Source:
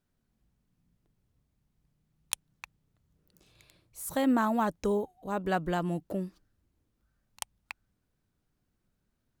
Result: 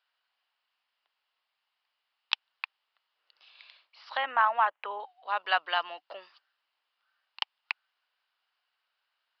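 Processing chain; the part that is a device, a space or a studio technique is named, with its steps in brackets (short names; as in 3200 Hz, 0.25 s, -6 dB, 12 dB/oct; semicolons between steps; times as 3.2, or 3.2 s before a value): 4.17–5 inverse Chebyshev low-pass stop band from 8100 Hz, stop band 60 dB; musical greeting card (downsampling 11025 Hz; HPF 860 Hz 24 dB/oct; bell 2900 Hz +8.5 dB 0.21 oct); gain +8 dB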